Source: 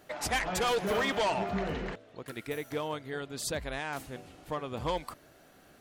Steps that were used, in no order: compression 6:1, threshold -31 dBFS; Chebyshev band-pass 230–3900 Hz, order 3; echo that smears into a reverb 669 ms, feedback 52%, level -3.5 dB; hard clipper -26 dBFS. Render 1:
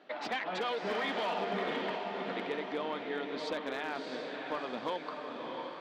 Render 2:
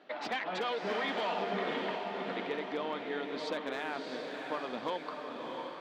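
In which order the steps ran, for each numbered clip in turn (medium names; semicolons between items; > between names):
Chebyshev band-pass > compression > echo that smears into a reverb > hard clipper; Chebyshev band-pass > compression > hard clipper > echo that smears into a reverb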